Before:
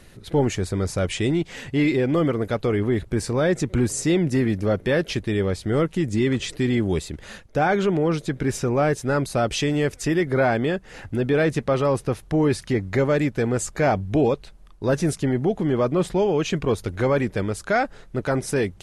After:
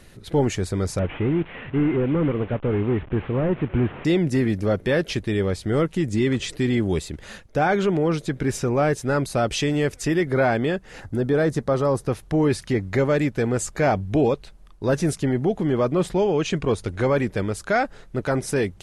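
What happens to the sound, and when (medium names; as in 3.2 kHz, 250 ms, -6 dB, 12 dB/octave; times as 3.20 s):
0.99–4.05 s: one-bit delta coder 16 kbps, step -35.5 dBFS
11.00–12.07 s: peaking EQ 2.6 kHz -11 dB 0.73 oct
16.17–17.11 s: steep low-pass 11 kHz 96 dB/octave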